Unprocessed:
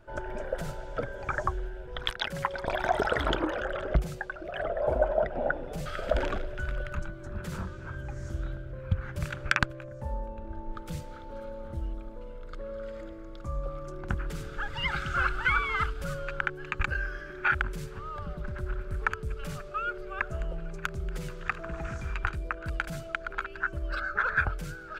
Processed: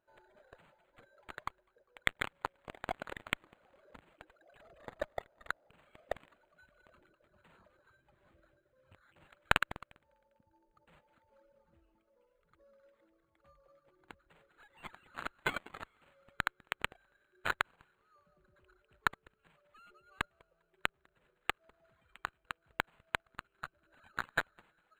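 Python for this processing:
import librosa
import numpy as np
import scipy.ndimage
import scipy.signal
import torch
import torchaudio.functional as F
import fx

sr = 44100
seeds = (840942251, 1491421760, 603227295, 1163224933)

p1 = fx.rattle_buzz(x, sr, strikes_db=-25.0, level_db=-27.0)
p2 = fx.riaa(p1, sr, side='recording')
p3 = fx.vibrato(p2, sr, rate_hz=3.5, depth_cents=20.0)
p4 = p3 + fx.echo_split(p3, sr, split_hz=590.0, low_ms=775, high_ms=200, feedback_pct=52, wet_db=-8.0, dry=0)
p5 = fx.cheby_harmonics(p4, sr, harmonics=(2, 5, 7), levels_db=(-10, -8, -7), full_scale_db=-3.5)
p6 = fx.dereverb_blind(p5, sr, rt60_s=1.7)
p7 = np.interp(np.arange(len(p6)), np.arange(len(p6))[::8], p6[::8])
y = p7 * 10.0 ** (-4.0 / 20.0)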